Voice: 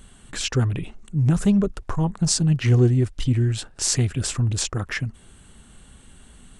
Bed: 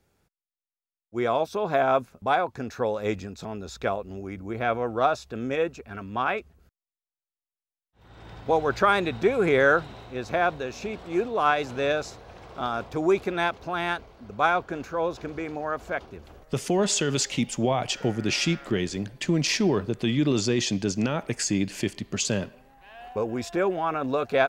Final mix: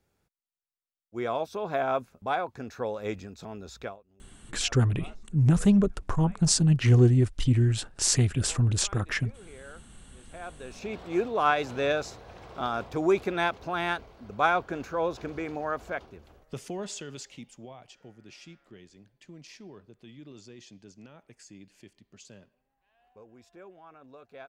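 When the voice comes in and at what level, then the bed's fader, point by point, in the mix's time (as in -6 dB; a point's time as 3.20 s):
4.20 s, -2.0 dB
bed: 3.82 s -5.5 dB
4.05 s -28 dB
10.13 s -28 dB
10.93 s -1.5 dB
15.71 s -1.5 dB
17.95 s -24.5 dB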